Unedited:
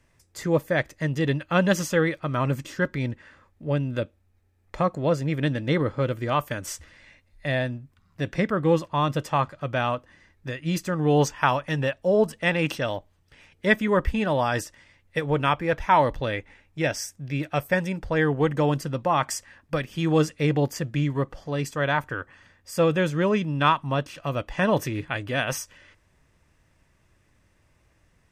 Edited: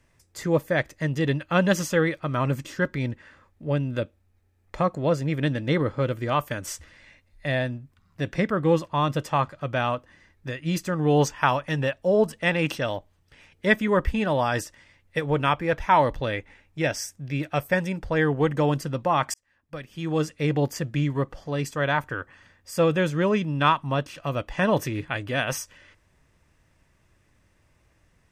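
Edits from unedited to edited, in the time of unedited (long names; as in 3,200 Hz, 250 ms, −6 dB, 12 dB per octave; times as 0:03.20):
0:19.34–0:20.69: fade in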